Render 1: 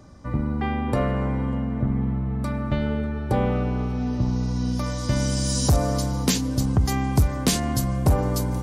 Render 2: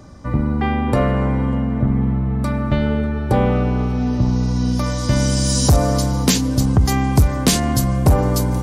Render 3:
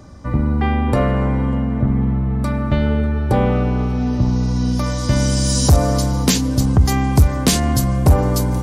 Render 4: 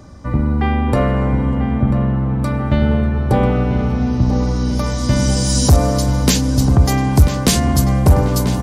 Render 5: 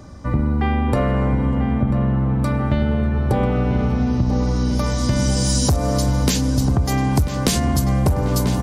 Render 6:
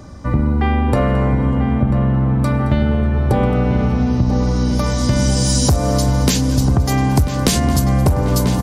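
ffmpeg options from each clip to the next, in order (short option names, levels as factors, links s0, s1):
-af "acontrast=64"
-af "equalizer=f=76:t=o:w=0.31:g=5"
-filter_complex "[0:a]asplit=2[s0][s1];[s1]adelay=991,lowpass=f=3500:p=1,volume=0.335,asplit=2[s2][s3];[s3]adelay=991,lowpass=f=3500:p=1,volume=0.55,asplit=2[s4][s5];[s5]adelay=991,lowpass=f=3500:p=1,volume=0.55,asplit=2[s6][s7];[s7]adelay=991,lowpass=f=3500:p=1,volume=0.55,asplit=2[s8][s9];[s9]adelay=991,lowpass=f=3500:p=1,volume=0.55,asplit=2[s10][s11];[s11]adelay=991,lowpass=f=3500:p=1,volume=0.55[s12];[s0][s2][s4][s6][s8][s10][s12]amix=inputs=7:normalize=0,volume=1.12"
-af "acompressor=threshold=0.2:ratio=10"
-af "aecho=1:1:220:0.133,volume=1.41"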